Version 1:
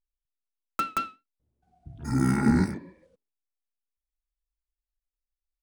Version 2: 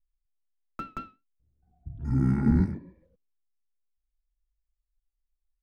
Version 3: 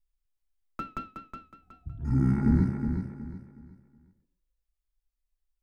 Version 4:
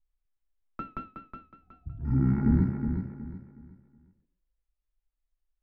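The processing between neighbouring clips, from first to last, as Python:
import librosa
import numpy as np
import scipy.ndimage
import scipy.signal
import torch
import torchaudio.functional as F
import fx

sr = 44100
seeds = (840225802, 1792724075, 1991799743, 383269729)

y1 = fx.riaa(x, sr, side='playback')
y1 = y1 * librosa.db_to_amplitude(-9.0)
y2 = fx.rider(y1, sr, range_db=10, speed_s=0.5)
y2 = fx.echo_feedback(y2, sr, ms=368, feedback_pct=31, wet_db=-7)
y2 = y2 * librosa.db_to_amplitude(1.5)
y3 = fx.air_absorb(y2, sr, metres=310.0)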